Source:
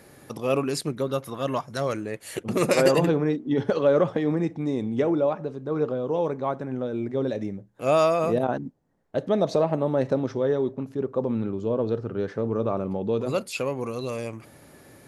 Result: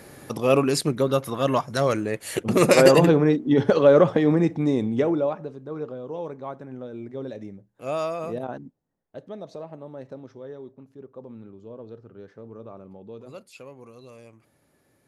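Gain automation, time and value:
4.68 s +5 dB
5.84 s -7.5 dB
8.65 s -7.5 dB
9.42 s -15.5 dB

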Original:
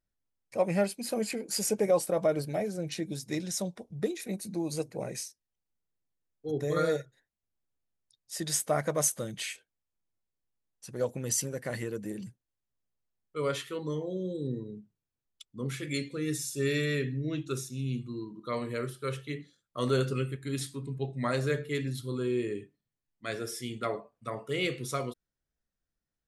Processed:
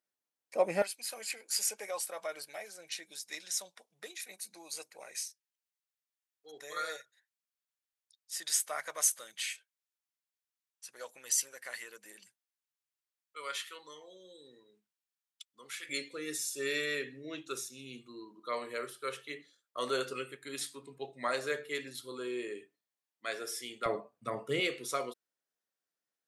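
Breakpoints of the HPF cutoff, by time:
370 Hz
from 0.82 s 1300 Hz
from 15.89 s 540 Hz
from 23.86 s 150 Hz
from 24.6 s 410 Hz

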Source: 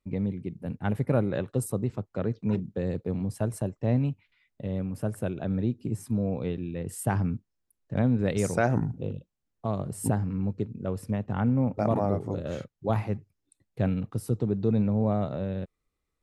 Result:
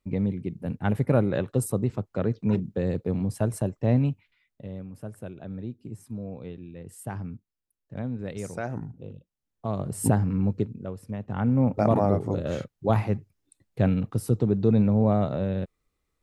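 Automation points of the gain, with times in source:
4.08 s +3 dB
4.85 s -8 dB
9.11 s -8 dB
10.03 s +4.5 dB
10.59 s +4.5 dB
10.99 s -7 dB
11.65 s +4 dB

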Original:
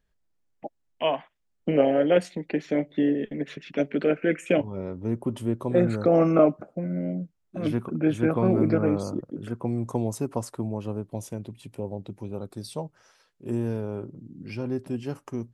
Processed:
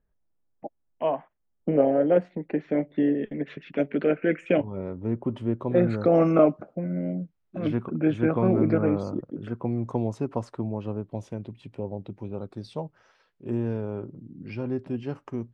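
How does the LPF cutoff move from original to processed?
2.16 s 1200 Hz
3.29 s 2700 Hz
5.58 s 2700 Hz
6.39 s 6900 Hz
6.74 s 3300 Hz

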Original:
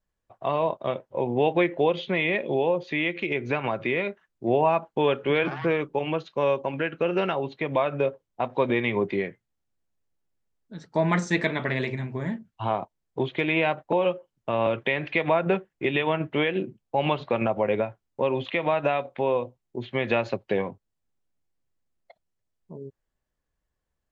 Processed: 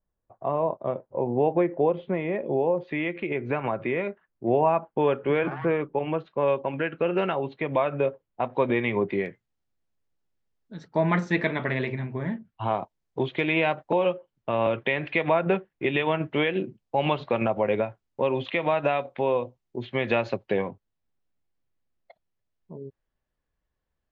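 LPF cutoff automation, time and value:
1100 Hz
from 2.78 s 1900 Hz
from 6.48 s 3000 Hz
from 9.26 s 5800 Hz
from 10.88 s 3200 Hz
from 12.71 s 6700 Hz
from 14.02 s 4100 Hz
from 16.01 s 6300 Hz
from 20.46 s 4300 Hz

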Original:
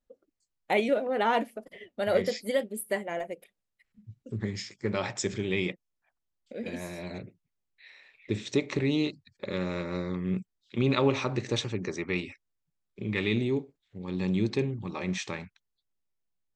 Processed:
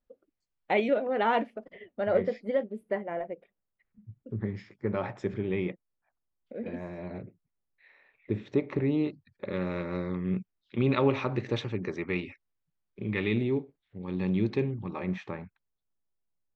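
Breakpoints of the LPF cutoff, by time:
1.37 s 3100 Hz
2.21 s 1500 Hz
8.99 s 1500 Hz
9.75 s 2700 Hz
14.7 s 2700 Hz
15.37 s 1300 Hz

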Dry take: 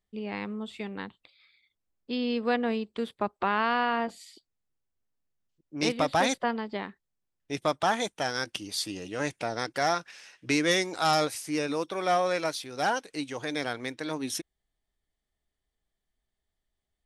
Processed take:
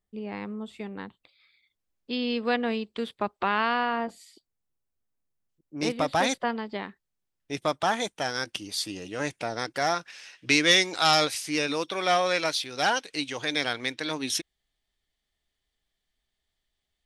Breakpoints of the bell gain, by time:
bell 3400 Hz 2 oct
0.98 s -5 dB
2.19 s +4.5 dB
3.6 s +4.5 dB
4.07 s -4.5 dB
5.77 s -4.5 dB
6.22 s +1.5 dB
9.96 s +1.5 dB
10.54 s +9.5 dB

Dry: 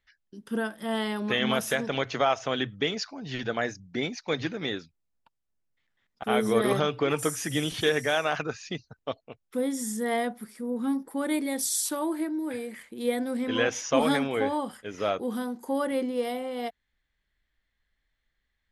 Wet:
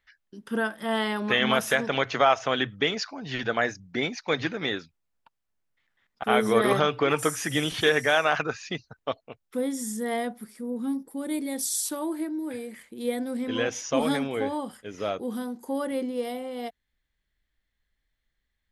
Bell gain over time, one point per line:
bell 1400 Hz 2.6 oct
9.09 s +5.5 dB
9.86 s -2.5 dB
10.61 s -2.5 dB
11.16 s -12 dB
11.59 s -3.5 dB

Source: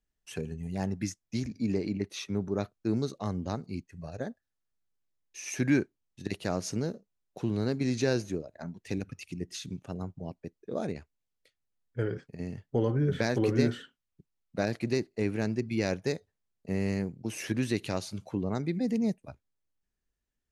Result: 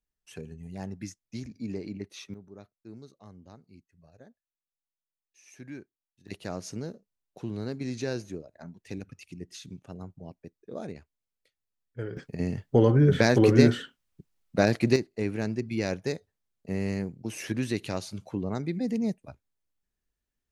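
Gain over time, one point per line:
-5.5 dB
from 2.34 s -17 dB
from 6.28 s -4.5 dB
from 12.17 s +7.5 dB
from 14.96 s 0 dB

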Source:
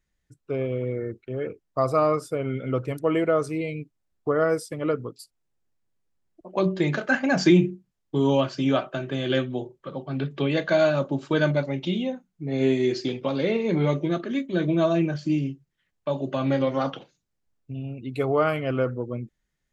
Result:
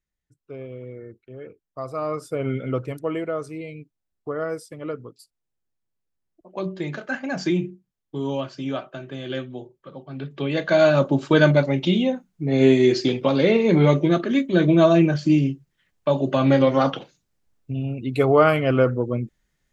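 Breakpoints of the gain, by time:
1.91 s -9 dB
2.48 s +3.5 dB
3.28 s -5.5 dB
10.15 s -5.5 dB
11 s +6.5 dB

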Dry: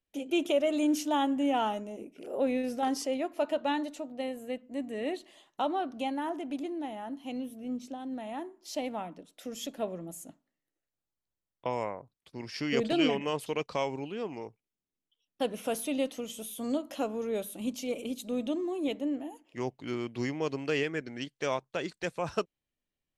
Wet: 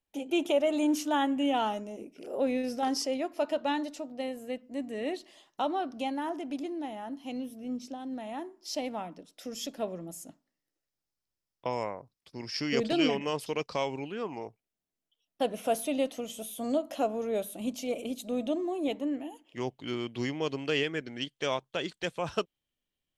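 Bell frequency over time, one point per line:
bell +8.5 dB 0.34 oct
0.86 s 850 Hz
1.72 s 5200 Hz
13.72 s 5200 Hz
14.43 s 670 Hz
18.88 s 670 Hz
19.3 s 3200 Hz

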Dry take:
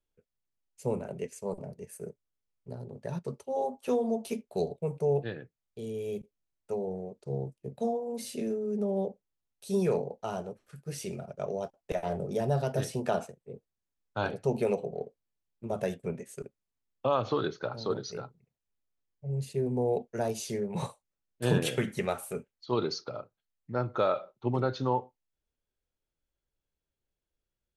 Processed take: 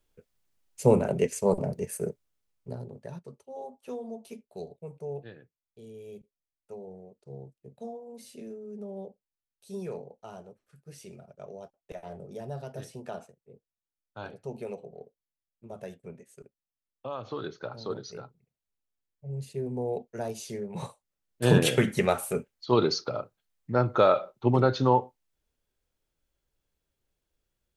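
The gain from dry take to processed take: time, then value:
1.83 s +11 dB
2.79 s +3 dB
3.29 s -9.5 dB
17.17 s -9.5 dB
17.58 s -3 dB
20.8 s -3 dB
21.59 s +6.5 dB

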